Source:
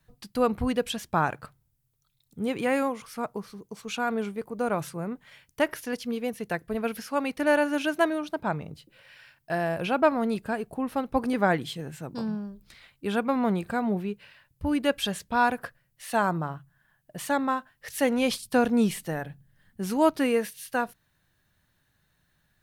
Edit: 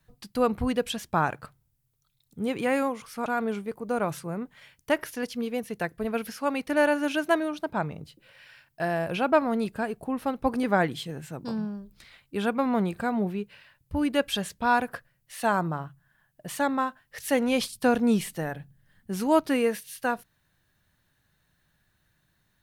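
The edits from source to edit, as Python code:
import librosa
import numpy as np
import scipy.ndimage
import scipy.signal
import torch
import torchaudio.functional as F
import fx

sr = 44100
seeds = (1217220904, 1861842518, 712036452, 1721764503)

y = fx.edit(x, sr, fx.cut(start_s=3.26, length_s=0.7), tone=tone)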